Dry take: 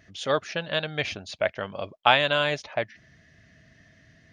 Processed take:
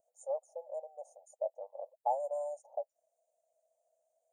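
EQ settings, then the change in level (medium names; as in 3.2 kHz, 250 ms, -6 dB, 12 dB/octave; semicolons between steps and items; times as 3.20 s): brick-wall FIR high-pass 480 Hz; Chebyshev band-stop 840–7400 Hz, order 5; treble shelf 3.7 kHz +9 dB; -9.0 dB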